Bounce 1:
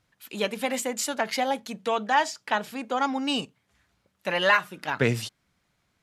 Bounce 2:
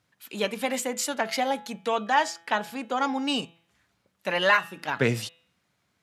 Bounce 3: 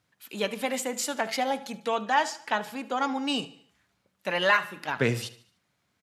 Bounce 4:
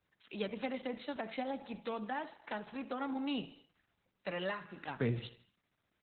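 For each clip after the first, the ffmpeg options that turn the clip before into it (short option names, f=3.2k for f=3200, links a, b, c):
-af "highpass=92,bandreject=f=167.4:t=h:w=4,bandreject=f=334.8:t=h:w=4,bandreject=f=502.2:t=h:w=4,bandreject=f=669.6:t=h:w=4,bandreject=f=837:t=h:w=4,bandreject=f=1.0044k:t=h:w=4,bandreject=f=1.1718k:t=h:w=4,bandreject=f=1.3392k:t=h:w=4,bandreject=f=1.5066k:t=h:w=4,bandreject=f=1.674k:t=h:w=4,bandreject=f=1.8414k:t=h:w=4,bandreject=f=2.0088k:t=h:w=4,bandreject=f=2.1762k:t=h:w=4,bandreject=f=2.3436k:t=h:w=4,bandreject=f=2.511k:t=h:w=4,bandreject=f=2.6784k:t=h:w=4,bandreject=f=2.8458k:t=h:w=4,bandreject=f=3.0132k:t=h:w=4,bandreject=f=3.1806k:t=h:w=4,bandreject=f=3.348k:t=h:w=4,bandreject=f=3.5154k:t=h:w=4,bandreject=f=3.6828k:t=h:w=4,bandreject=f=3.8502k:t=h:w=4"
-af "aecho=1:1:74|148|222|296:0.126|0.0579|0.0266|0.0123,volume=-1.5dB"
-filter_complex "[0:a]lowpass=4.8k,acrossover=split=380[a][b];[b]acompressor=threshold=-34dB:ratio=4[c];[a][c]amix=inputs=2:normalize=0,volume=-4.5dB" -ar 48000 -c:a libopus -b:a 8k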